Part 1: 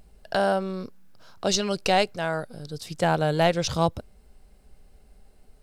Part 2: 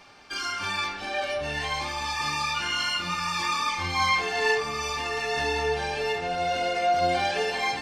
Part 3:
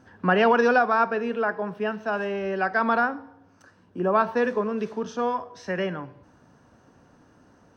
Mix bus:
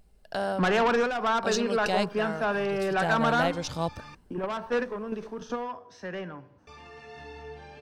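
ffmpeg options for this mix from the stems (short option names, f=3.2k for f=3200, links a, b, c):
-filter_complex "[0:a]asoftclip=type=hard:threshold=-10dB,volume=-7dB,asplit=2[a][b];[1:a]highpass=100,aemphasis=mode=reproduction:type=bsi,adelay=1800,volume=-18dB,asplit=3[c][d][e];[c]atrim=end=4.15,asetpts=PTS-STARTPTS,afade=t=out:st=4.146:d=0.004:c=hsin[f];[d]atrim=start=4.15:end=6.67,asetpts=PTS-STARTPTS,volume=0[g];[e]atrim=start=6.67,asetpts=PTS-STARTPTS,afade=t=in:d=0.004:c=hsin[h];[f][g][h]concat=n=3:v=0:a=1[i];[2:a]asoftclip=type=tanh:threshold=-21.5dB,adelay=350,volume=1.5dB[j];[b]apad=whole_len=357816[k];[j][k]sidechaingate=range=-8dB:threshold=-55dB:ratio=16:detection=peak[l];[a][i][l]amix=inputs=3:normalize=0"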